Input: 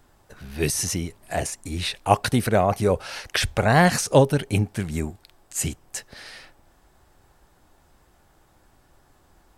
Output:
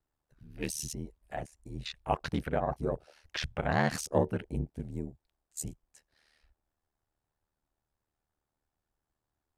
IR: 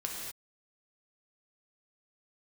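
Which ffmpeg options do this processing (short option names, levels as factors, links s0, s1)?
-af "aeval=exprs='val(0)*sin(2*PI*38*n/s)':c=same,afwtdn=0.0158,volume=0.376"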